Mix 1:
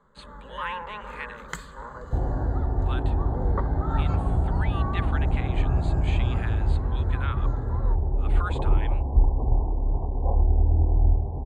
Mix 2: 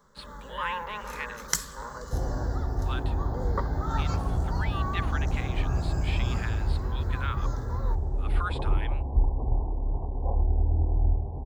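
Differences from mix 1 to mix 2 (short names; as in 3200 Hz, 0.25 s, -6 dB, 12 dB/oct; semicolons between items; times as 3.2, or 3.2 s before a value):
speech: add running mean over 7 samples; second sound -4.0 dB; master: remove running mean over 8 samples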